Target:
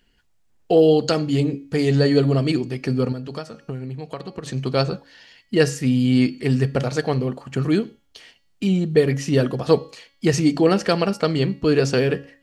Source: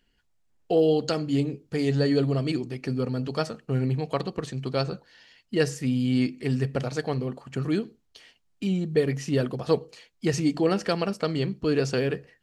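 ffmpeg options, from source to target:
ffmpeg -i in.wav -filter_complex "[0:a]bandreject=frequency=278.4:width_type=h:width=4,bandreject=frequency=556.8:width_type=h:width=4,bandreject=frequency=835.2:width_type=h:width=4,bandreject=frequency=1113.6:width_type=h:width=4,bandreject=frequency=1392:width_type=h:width=4,bandreject=frequency=1670.4:width_type=h:width=4,bandreject=frequency=1948.8:width_type=h:width=4,bandreject=frequency=2227.2:width_type=h:width=4,bandreject=frequency=2505.6:width_type=h:width=4,bandreject=frequency=2784:width_type=h:width=4,bandreject=frequency=3062.4:width_type=h:width=4,bandreject=frequency=3340.8:width_type=h:width=4,bandreject=frequency=3619.2:width_type=h:width=4,bandreject=frequency=3897.6:width_type=h:width=4,bandreject=frequency=4176:width_type=h:width=4,bandreject=frequency=4454.4:width_type=h:width=4,bandreject=frequency=4732.8:width_type=h:width=4,bandreject=frequency=5011.2:width_type=h:width=4,bandreject=frequency=5289.6:width_type=h:width=4,bandreject=frequency=5568:width_type=h:width=4,bandreject=frequency=5846.4:width_type=h:width=4,bandreject=frequency=6124.8:width_type=h:width=4,bandreject=frequency=6403.2:width_type=h:width=4,asettb=1/sr,asplit=3[link_01][link_02][link_03];[link_01]atrim=end=3.124[link_04];[link_02]atrim=start=3.12:end=4.46,asetpts=PTS-STARTPTS,afade=type=in:duration=0.004:curve=qsin,afade=type=out:start_time=1.336:duration=0.004:curve=qsin,acompressor=threshold=-34dB:ratio=10[link_05];[link_03]atrim=start=4.456[link_06];[link_04][link_05]acrossfade=duration=0.004:curve1=hsin:curve2=qsin[link_07];[link_07][link_06]acrossfade=duration=0.004:curve1=qsin:curve2=hsin,volume=6.5dB" out.wav

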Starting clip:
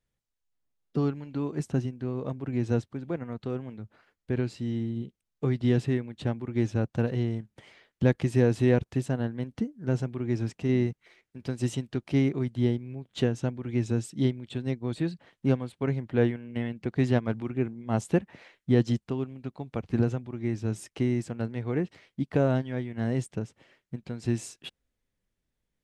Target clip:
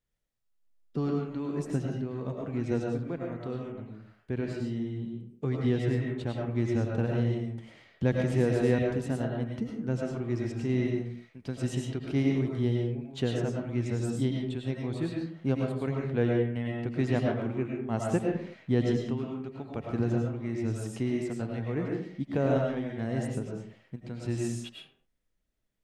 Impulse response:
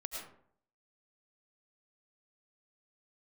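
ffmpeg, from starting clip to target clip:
-filter_complex "[1:a]atrim=start_sample=2205,afade=type=out:start_time=0.43:duration=0.01,atrim=end_sample=19404[link_01];[0:a][link_01]afir=irnorm=-1:irlink=0,asettb=1/sr,asplit=3[link_02][link_03][link_04];[link_02]atrim=end=3.724[link_05];[link_03]atrim=start=3.72:end=6.07,asetpts=PTS-STARTPTS,afade=type=in:duration=0.004:curve=qsin,afade=type=out:start_time=2.346:duration=0.004:curve=qsin,adynamicequalizer=threshold=0.00158:dfrequency=3500:dqfactor=0.7:tfrequency=3500:tqfactor=0.7:attack=5:release=100:ratio=0.375:range=2.5:mode=cutabove:tftype=highshelf[link_06];[link_04]atrim=start=6.066[link_07];[link_05][link_06]acrossfade=duration=0.004:curve1=hsin:curve2=qsin[link_08];[link_08][link_07]acrossfade=duration=0.004:curve1=qsin:curve2=hsin"

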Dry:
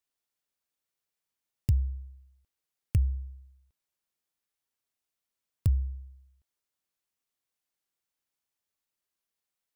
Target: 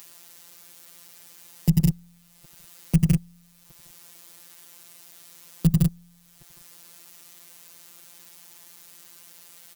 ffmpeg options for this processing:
ffmpeg -i in.wav -filter_complex "[0:a]highshelf=frequency=4400:gain=5,aecho=1:1:89|90|156|193:0.188|0.141|0.299|0.237,afftfilt=real='hypot(re,im)*cos(PI*b)':imag='0':win_size=1024:overlap=0.75,asplit=2[link_01][link_02];[link_02]acompressor=mode=upward:threshold=-40dB:ratio=2.5,volume=-2dB[link_03];[link_01][link_03]amix=inputs=2:normalize=0,highpass=frequency=92:poles=1,lowshelf=frequency=150:gain=11,alimiter=level_in=18.5dB:limit=-1dB:release=50:level=0:latency=1,volume=-2dB" out.wav

